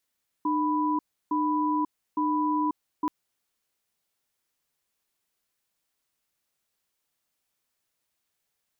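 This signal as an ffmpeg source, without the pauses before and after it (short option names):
-f lavfi -i "aevalsrc='0.0531*(sin(2*PI*303*t)+sin(2*PI*990*t))*clip(min(mod(t,0.86),0.54-mod(t,0.86))/0.005,0,1)':d=2.63:s=44100"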